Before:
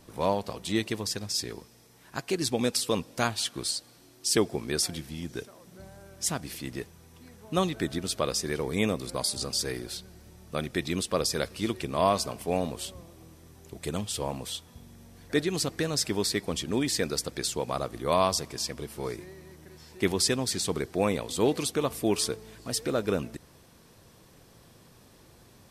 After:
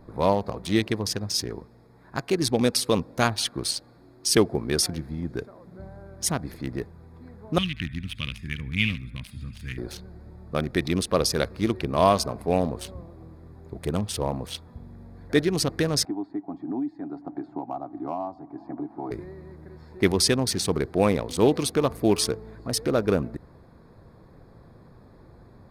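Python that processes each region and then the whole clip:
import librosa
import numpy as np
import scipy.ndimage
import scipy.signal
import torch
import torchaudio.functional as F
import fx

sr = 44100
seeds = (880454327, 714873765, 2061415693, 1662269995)

y = fx.chain(x, sr, fx.curve_eq(hz=(110.0, 260.0, 390.0, 730.0, 1300.0, 3000.0, 4200.0, 11000.0), db=(0, -8, -26, -30, -14, 13, -19, -9)),
    fx.echo_wet_highpass(ms=72, feedback_pct=45, hz=1900.0, wet_db=-8), at=(7.58, 9.78))
y = fx.chain(y, sr, fx.double_bandpass(hz=480.0, octaves=1.3),
    fx.comb(ms=7.2, depth=0.31),
    fx.band_squash(depth_pct=100), at=(16.05, 19.11))
y = fx.wiener(y, sr, points=15)
y = fx.low_shelf(y, sr, hz=83.0, db=5.5)
y = fx.notch(y, sr, hz=7500.0, q=5.7)
y = F.gain(torch.from_numpy(y), 5.0).numpy()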